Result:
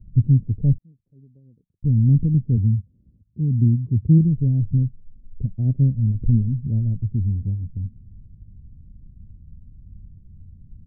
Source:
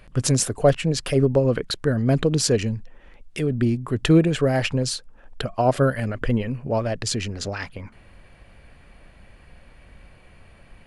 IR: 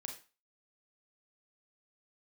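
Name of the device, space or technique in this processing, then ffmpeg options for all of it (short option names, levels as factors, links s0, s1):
the neighbour's flat through the wall: -filter_complex "[0:a]lowpass=f=210:w=0.5412,lowpass=f=210:w=1.3066,equalizer=f=94:t=o:w=0.64:g=6.5,asettb=1/sr,asplit=3[s0][s1][s2];[s0]atrim=end=0.784[s3];[s1]atrim=start=0.78:end=1.83,asetpts=PTS-STARTPTS,afade=t=in:d=0.004:c=qsin,afade=t=out:st=1.046:d=0.004:c=qsin,aderivative[s4];[s2]atrim=start=1.826[s5];[s3][s4]acrossfade=d=0.004:c1=hsin:c2=qsin[s6];[s6][s5]acrossfade=d=0.004:c1=qsin:c2=hsin,asplit=3[s7][s8][s9];[s7]afade=t=out:st=2.56:d=0.02[s10];[s8]highpass=f=65:w=0.5412,highpass=f=65:w=1.3066,afade=t=in:st=2.56:d=0.02,afade=t=out:st=4.18:d=0.02[s11];[s9]afade=t=in:st=4.18:d=0.02[s12];[s10][s11][s12]amix=inputs=3:normalize=0,volume=1.78"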